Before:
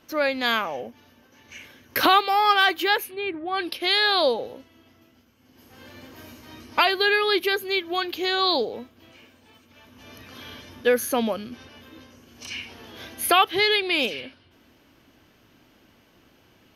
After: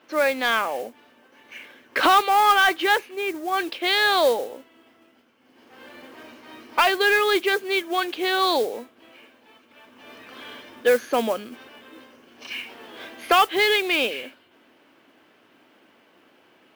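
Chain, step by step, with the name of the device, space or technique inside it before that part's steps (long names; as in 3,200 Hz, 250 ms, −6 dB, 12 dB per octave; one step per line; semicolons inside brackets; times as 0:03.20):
carbon microphone (band-pass filter 310–3,100 Hz; soft clipping −11 dBFS, distortion −19 dB; noise that follows the level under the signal 19 dB)
level +3.5 dB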